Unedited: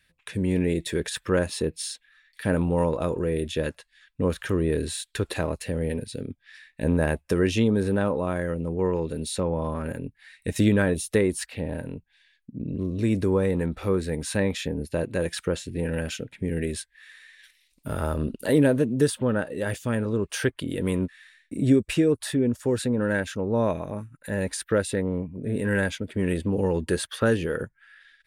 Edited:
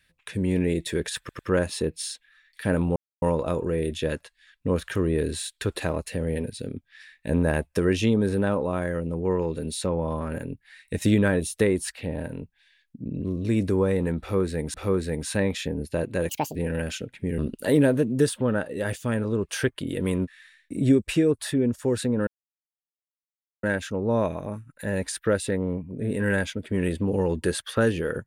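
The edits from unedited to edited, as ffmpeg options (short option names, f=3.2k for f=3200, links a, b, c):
-filter_complex "[0:a]asplit=9[a][b][c][d][e][f][g][h][i];[a]atrim=end=1.292[j];[b]atrim=start=1.188:end=1.292[k];[c]atrim=start=1.188:end=2.76,asetpts=PTS-STARTPTS,afade=t=out:st=1.568:d=0.004:c=hsin,apad=pad_dur=0.26[l];[d]atrim=start=2.76:end=14.282,asetpts=PTS-STARTPTS,afade=t=in:d=0.004:c=hsin[m];[e]atrim=start=13.738:end=15.294[n];[f]atrim=start=15.29:end=15.74,asetpts=PTS-STARTPTS,asetrate=75852,aresample=44100[o];[g]atrim=start=15.736:end=16.572[p];[h]atrim=start=18.188:end=23.08,asetpts=PTS-STARTPTS,afade=t=out:st=4.888:d=0.004:c=hsin,apad=pad_dur=1.36[q];[i]atrim=start=23.08,asetpts=PTS-STARTPTS,afade=t=in:d=0.004:c=hsin[r];[j][k]acrossfade=d=0.004:c1=hsin:c2=hsin[s];[l][m]concat=n=2:v=0:a=1[t];[s][t]acrossfade=d=0.004:c1=hsin:c2=hsin[u];[u][n]acrossfade=d=0.004:c1=hsin:c2=hsin[v];[v][o]acrossfade=d=0.004:c1=hsin:c2=hsin[w];[w][p]acrossfade=d=0.004:c1=hsin:c2=hsin[x];[q][r]concat=n=2:v=0:a=1[y];[x][y]acrossfade=d=0.004:c1=hsin:c2=hsin"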